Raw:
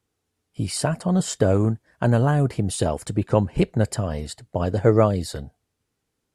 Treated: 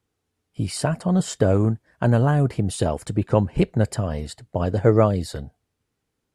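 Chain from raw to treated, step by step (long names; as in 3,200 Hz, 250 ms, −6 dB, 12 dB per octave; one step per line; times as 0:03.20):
bass and treble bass +1 dB, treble −3 dB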